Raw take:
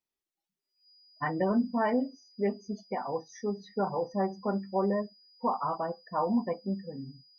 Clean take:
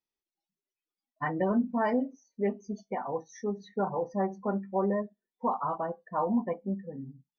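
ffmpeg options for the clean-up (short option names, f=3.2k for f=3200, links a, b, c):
-af "bandreject=f=4.9k:w=30"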